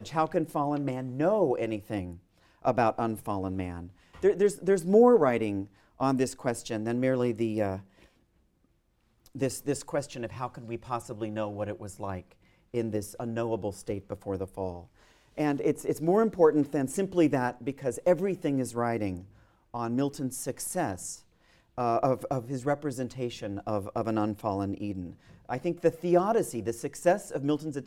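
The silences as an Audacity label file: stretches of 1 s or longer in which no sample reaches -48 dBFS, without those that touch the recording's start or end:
8.060000	9.260000	silence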